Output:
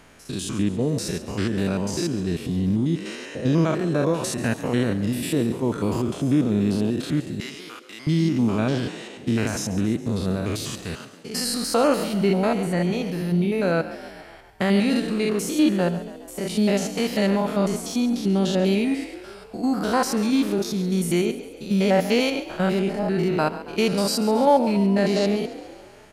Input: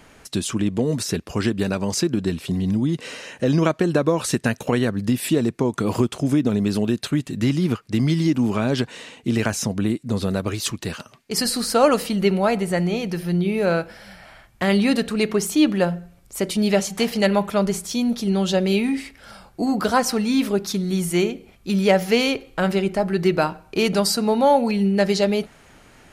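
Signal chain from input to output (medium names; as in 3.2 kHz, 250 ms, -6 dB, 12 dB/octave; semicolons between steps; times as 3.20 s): spectrogram pixelated in time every 100 ms; 7.40–8.07 s: high-pass 970 Hz 12 dB/octave; frequency-shifting echo 138 ms, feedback 59%, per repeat +43 Hz, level -15 dB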